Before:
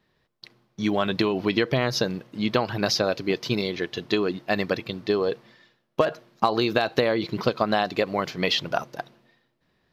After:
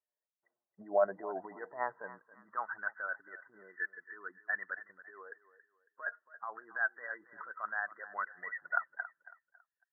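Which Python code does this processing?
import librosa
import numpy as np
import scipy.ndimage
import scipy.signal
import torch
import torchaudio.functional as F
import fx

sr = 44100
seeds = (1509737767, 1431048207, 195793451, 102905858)

p1 = fx.bin_expand(x, sr, power=1.5)
p2 = fx.tilt_eq(p1, sr, slope=-2.5)
p3 = fx.over_compress(p2, sr, threshold_db=-26.0, ratio=-1.0)
p4 = fx.brickwall_lowpass(p3, sr, high_hz=2000.0)
p5 = p4 + fx.echo_feedback(p4, sr, ms=276, feedback_pct=32, wet_db=-16, dry=0)
p6 = fx.filter_sweep_highpass(p5, sr, from_hz=630.0, to_hz=1500.0, start_s=1.06, end_s=2.98, q=4.1)
y = p6 * librosa.db_to_amplitude(-7.5)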